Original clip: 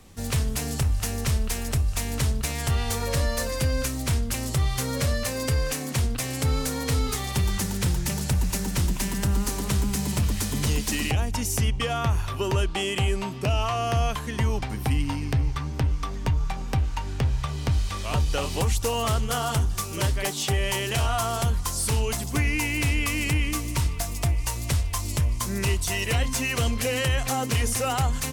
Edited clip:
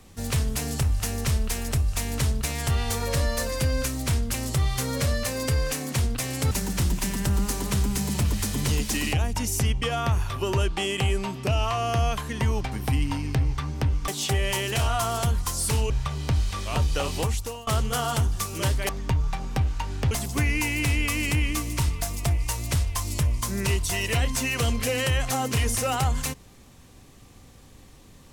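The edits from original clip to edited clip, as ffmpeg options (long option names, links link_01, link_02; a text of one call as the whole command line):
ffmpeg -i in.wav -filter_complex "[0:a]asplit=7[link_01][link_02][link_03][link_04][link_05][link_06][link_07];[link_01]atrim=end=6.512[link_08];[link_02]atrim=start=8.488:end=16.062[link_09];[link_03]atrim=start=20.268:end=22.092[link_10];[link_04]atrim=start=17.278:end=19.05,asetpts=PTS-STARTPTS,afade=type=out:start_time=1.262:duration=0.51:silence=0.0841395[link_11];[link_05]atrim=start=19.05:end=20.272,asetpts=PTS-STARTPTS,afade=type=in:duration=0.004:curve=hsin:silence=0.0841395[link_12];[link_06]atrim=start=16.058:end=17.282[link_13];[link_07]atrim=start=22.088[link_14];[link_08][link_09]acrossfade=duration=0.004:curve1=hsin:curve2=hsin[link_15];[link_15][link_10]acrossfade=duration=0.004:curve1=hsin:curve2=hsin[link_16];[link_11][link_12]concat=n=2:v=0:a=1[link_17];[link_16][link_17]acrossfade=duration=0.004:curve1=hsin:curve2=hsin[link_18];[link_18][link_13]acrossfade=duration=0.004:curve1=hsin:curve2=hsin[link_19];[link_19][link_14]acrossfade=duration=0.004:curve1=hsin:curve2=hsin" out.wav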